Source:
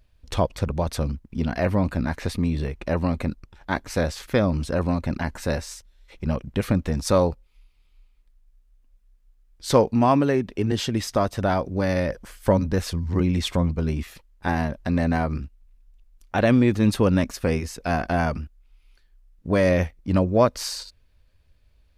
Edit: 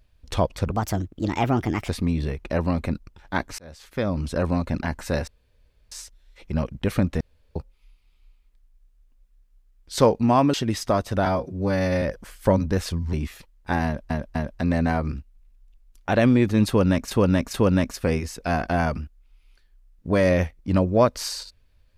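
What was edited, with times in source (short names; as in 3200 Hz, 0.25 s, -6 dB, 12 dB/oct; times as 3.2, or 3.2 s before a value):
0.71–2.25 speed 131%
3.95–4.73 fade in
5.64 insert room tone 0.64 s
6.93–7.28 room tone
10.26–10.8 cut
11.52–12.03 stretch 1.5×
13.14–13.89 cut
14.61–14.86 loop, 3 plays
16.94–17.37 loop, 3 plays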